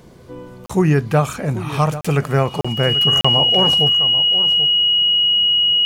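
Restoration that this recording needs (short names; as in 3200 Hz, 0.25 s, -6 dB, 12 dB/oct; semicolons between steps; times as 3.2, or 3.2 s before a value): notch 2900 Hz, Q 30; interpolate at 0.66/2.01/2.61/3.21, 35 ms; inverse comb 0.787 s -13.5 dB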